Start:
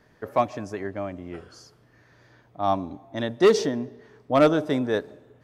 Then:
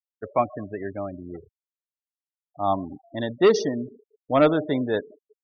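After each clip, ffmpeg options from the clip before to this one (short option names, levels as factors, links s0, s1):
-af "afftfilt=real='re*gte(hypot(re,im),0.0282)':imag='im*gte(hypot(re,im),0.0282)':win_size=1024:overlap=0.75"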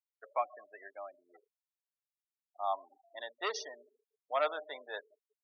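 -af "highpass=f=660:w=0.5412,highpass=f=660:w=1.3066,volume=0.376"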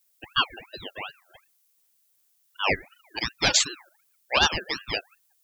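-af "crystalizer=i=9:c=0,acontrast=80,aeval=exprs='val(0)*sin(2*PI*1600*n/s+1600*0.4/2.7*sin(2*PI*2.7*n/s))':c=same,volume=1.19"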